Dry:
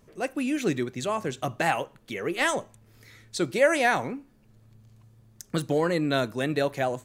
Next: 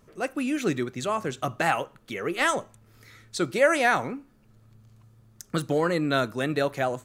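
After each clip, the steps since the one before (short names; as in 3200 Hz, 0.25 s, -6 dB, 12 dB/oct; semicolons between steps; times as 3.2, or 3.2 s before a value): bell 1300 Hz +6.5 dB 0.34 oct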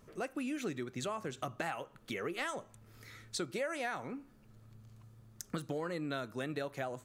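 compressor 5:1, threshold -34 dBFS, peak gain reduction 17 dB; gain -2 dB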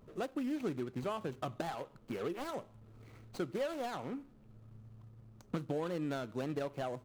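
median filter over 25 samples; gain +2 dB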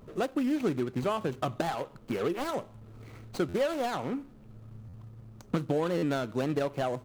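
stuck buffer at 3.48/4.88/5.97, samples 512, times 4; gain +8 dB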